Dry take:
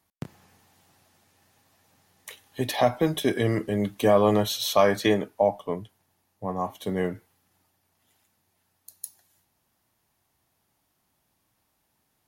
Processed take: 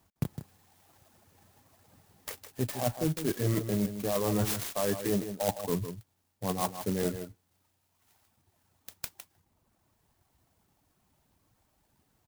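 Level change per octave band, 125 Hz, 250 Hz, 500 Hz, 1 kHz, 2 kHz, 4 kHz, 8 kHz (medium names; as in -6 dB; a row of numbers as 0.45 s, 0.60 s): -1.5 dB, -5.0 dB, -9.0 dB, -9.5 dB, -9.5 dB, -9.0 dB, 0.0 dB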